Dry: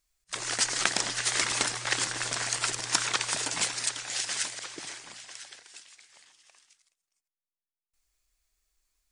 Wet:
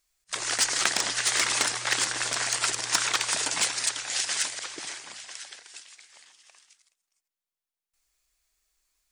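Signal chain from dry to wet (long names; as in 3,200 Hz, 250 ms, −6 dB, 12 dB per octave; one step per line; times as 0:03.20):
low-shelf EQ 260 Hz −8 dB
in parallel at −6 dB: wave folding −20.5 dBFS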